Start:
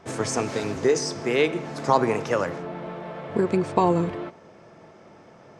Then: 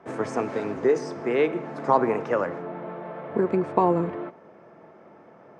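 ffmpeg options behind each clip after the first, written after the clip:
-filter_complex "[0:a]acrossover=split=160 2200:gain=0.251 1 0.141[s0][s1][s2];[s0][s1][s2]amix=inputs=3:normalize=0"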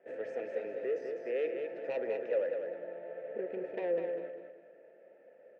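-filter_complex "[0:a]asoftclip=type=tanh:threshold=0.119,asplit=3[s0][s1][s2];[s0]bandpass=f=530:t=q:w=8,volume=1[s3];[s1]bandpass=f=1840:t=q:w=8,volume=0.501[s4];[s2]bandpass=f=2480:t=q:w=8,volume=0.355[s5];[s3][s4][s5]amix=inputs=3:normalize=0,aecho=1:1:201|402|603|804:0.501|0.17|0.0579|0.0197"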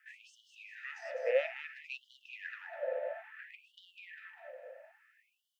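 -af "afftfilt=real='re*gte(b*sr/1024,470*pow(2900/470,0.5+0.5*sin(2*PI*0.59*pts/sr)))':imag='im*gte(b*sr/1024,470*pow(2900/470,0.5+0.5*sin(2*PI*0.59*pts/sr)))':win_size=1024:overlap=0.75,volume=2.66"

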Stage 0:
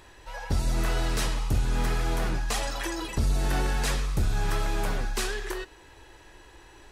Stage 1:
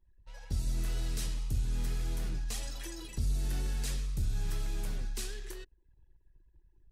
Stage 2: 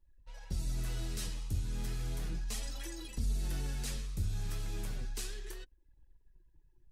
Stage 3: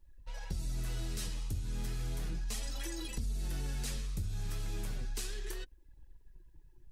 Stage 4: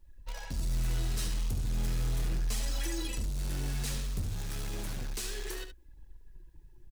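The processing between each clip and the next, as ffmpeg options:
-filter_complex "[0:a]anlmdn=0.0631,equalizer=f=960:t=o:w=2.8:g=-14.5,acrossover=split=130|3000[s0][s1][s2];[s1]acompressor=threshold=0.02:ratio=6[s3];[s0][s3][s2]amix=inputs=3:normalize=0,volume=0.531"
-af "flanger=delay=3.5:depth=7.1:regen=41:speed=0.34:shape=sinusoidal,volume=1.33"
-af "acompressor=threshold=0.00708:ratio=3,volume=2.24"
-filter_complex "[0:a]asplit=2[s0][s1];[s1]acrusher=bits=5:mix=0:aa=0.000001,volume=0.501[s2];[s0][s2]amix=inputs=2:normalize=0,asoftclip=type=hard:threshold=0.0224,aecho=1:1:72:0.355,volume=1.5"

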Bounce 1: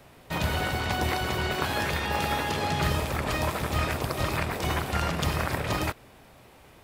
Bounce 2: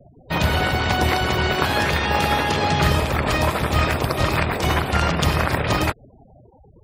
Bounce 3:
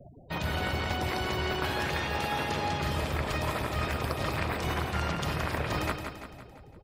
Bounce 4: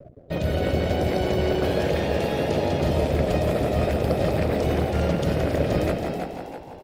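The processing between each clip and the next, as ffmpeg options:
-af "afftfilt=real='re*gte(hypot(re,im),0.00794)':imag='im*gte(hypot(re,im),0.00794)':win_size=1024:overlap=0.75,volume=2.51"
-af "areverse,acompressor=threshold=0.0398:ratio=5,areverse,aecho=1:1:170|340|510|680|850|1020:0.447|0.223|0.112|0.0558|0.0279|0.014,volume=0.841"
-filter_complex "[0:a]aeval=exprs='sgn(val(0))*max(abs(val(0))-0.00188,0)':c=same,lowshelf=f=730:t=q:w=3:g=8,asplit=6[s0][s1][s2][s3][s4][s5];[s1]adelay=323,afreqshift=100,volume=0.447[s6];[s2]adelay=646,afreqshift=200,volume=0.174[s7];[s3]adelay=969,afreqshift=300,volume=0.0676[s8];[s4]adelay=1292,afreqshift=400,volume=0.0266[s9];[s5]adelay=1615,afreqshift=500,volume=0.0104[s10];[s0][s6][s7][s8][s9][s10]amix=inputs=6:normalize=0"

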